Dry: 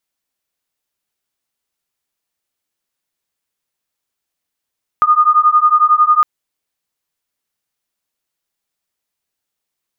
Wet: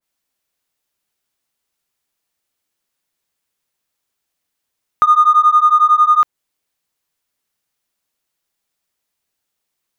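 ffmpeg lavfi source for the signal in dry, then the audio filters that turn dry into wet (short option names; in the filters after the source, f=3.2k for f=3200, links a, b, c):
-f lavfi -i "aevalsrc='0.282*(sin(2*PI*1220*t)+sin(2*PI*1231*t))':d=1.21:s=44100"
-filter_complex "[0:a]asplit=2[a][b];[b]asoftclip=type=tanh:threshold=-21dB,volume=-8dB[c];[a][c]amix=inputs=2:normalize=0,adynamicequalizer=threshold=0.112:dfrequency=1600:dqfactor=0.7:tfrequency=1600:tqfactor=0.7:attack=5:release=100:ratio=0.375:range=2:mode=cutabove:tftype=highshelf"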